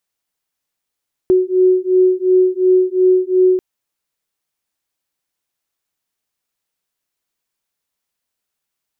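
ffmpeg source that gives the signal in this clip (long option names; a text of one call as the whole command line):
ffmpeg -f lavfi -i "aevalsrc='0.224*(sin(2*PI*368*t)+sin(2*PI*370.8*t))':duration=2.29:sample_rate=44100" out.wav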